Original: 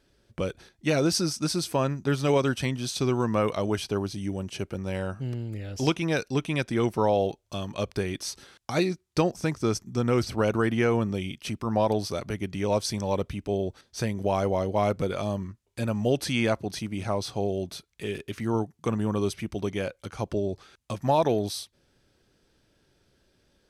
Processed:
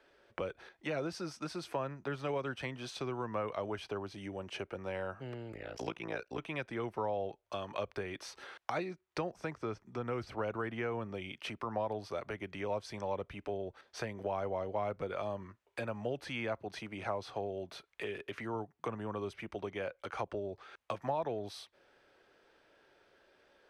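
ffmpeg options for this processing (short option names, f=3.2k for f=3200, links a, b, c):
-filter_complex "[0:a]asettb=1/sr,asplit=3[a][b][c];[a]atrim=end=5.524[d];[b]atrim=start=5.52:end=6.39,asetpts=PTS-STARTPTS,afade=t=in:d=0.004:c=qsin,afade=t=out:st=0.866:d=0.004:c=qsin,tremolo=f=58:d=0.947[e];[c]atrim=start=6.386[f];[d][e]acrossfade=d=0.004:c1=hsin:c2=qsin[g];[g][f]acrossfade=d=0.004:c1=qsin:c2=hsin,asettb=1/sr,asplit=3[h][i][j];[h]atrim=end=9.564[k];[i]atrim=start=9.56:end=10.04,asetpts=PTS-STARTPTS,afade=t=in:d=0.004:c=qsin,afade=t=out:st=0.476:d=0.004:c=qsin,acrossover=split=4100[l][m];[m]acompressor=threshold=-49dB:ratio=4:attack=1:release=60[n];[l][n]amix=inputs=2:normalize=0[o];[j]atrim=start=10.036[p];[k][o]acrossfade=d=0.004:c1=hsin:c2=qsin[q];[q][p]acrossfade=d=0.004:c1=qsin:c2=hsin,highshelf=f=8.1k:g=-7,acrossover=split=180[r][s];[s]acompressor=threshold=-41dB:ratio=4[t];[r][t]amix=inputs=2:normalize=0,acrossover=split=410 2800:gain=0.0794 1 0.2[u][v][w];[u][v][w]amix=inputs=3:normalize=0,volume=7dB"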